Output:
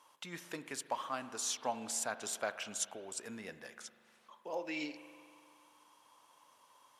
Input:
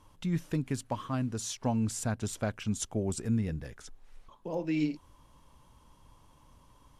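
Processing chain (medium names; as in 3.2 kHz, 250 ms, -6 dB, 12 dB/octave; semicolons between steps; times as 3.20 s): 2.81–3.27 s: compression, threshold -33 dBFS, peak gain reduction 7 dB; high-pass 670 Hz 12 dB/octave; reverberation RT60 2.2 s, pre-delay 40 ms, DRR 12 dB; trim +1 dB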